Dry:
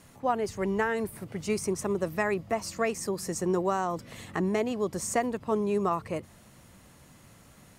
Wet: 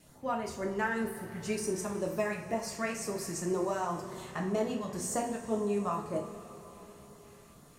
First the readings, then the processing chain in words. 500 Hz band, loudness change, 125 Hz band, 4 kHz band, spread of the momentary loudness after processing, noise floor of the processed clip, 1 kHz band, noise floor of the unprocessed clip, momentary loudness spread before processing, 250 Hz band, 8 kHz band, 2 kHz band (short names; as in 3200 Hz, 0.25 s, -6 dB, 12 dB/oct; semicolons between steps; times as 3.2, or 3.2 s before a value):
-4.5 dB, -4.0 dB, -4.5 dB, -3.0 dB, 17 LU, -56 dBFS, -4.5 dB, -56 dBFS, 6 LU, -3.5 dB, -2.0 dB, -3.5 dB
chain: LFO notch sine 2 Hz 350–2700 Hz; vibrato 2 Hz 17 cents; two-slope reverb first 0.43 s, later 4.6 s, from -18 dB, DRR -0.5 dB; gain -5.5 dB